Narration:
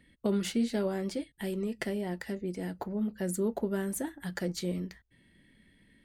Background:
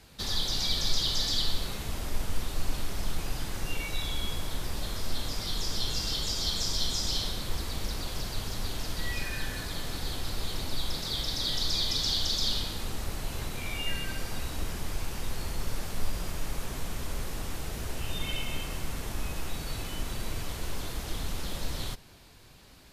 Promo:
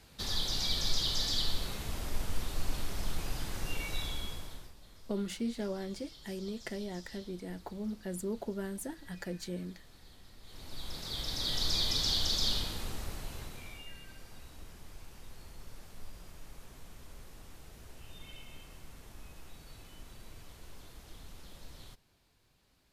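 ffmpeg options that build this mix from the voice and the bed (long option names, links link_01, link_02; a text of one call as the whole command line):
ffmpeg -i stem1.wav -i stem2.wav -filter_complex "[0:a]adelay=4850,volume=-6dB[link_01];[1:a]volume=17dB,afade=type=out:start_time=3.97:duration=0.77:silence=0.112202,afade=type=in:start_time=10.42:duration=1.27:silence=0.0944061,afade=type=out:start_time=12.48:duration=1.41:silence=0.188365[link_02];[link_01][link_02]amix=inputs=2:normalize=0" out.wav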